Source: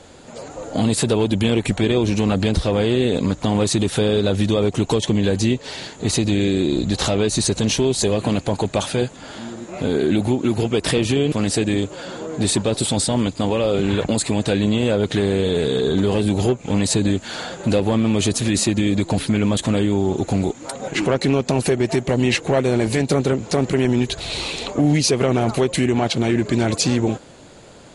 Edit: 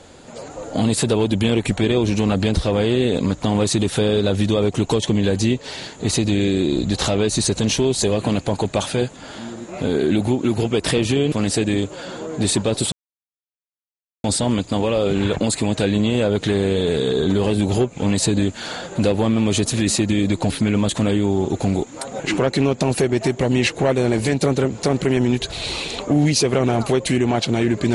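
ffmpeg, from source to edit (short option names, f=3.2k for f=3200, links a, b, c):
-filter_complex "[0:a]asplit=2[a][b];[a]atrim=end=12.92,asetpts=PTS-STARTPTS,afade=t=out:st=12.916:d=0.004:c=hsin,apad=pad_dur=1.32[c];[b]atrim=start=12.92,asetpts=PTS-STARTPTS,afade=t=in:d=0.004:c=hsin[d];[c][d]concat=n=2:v=0:a=1"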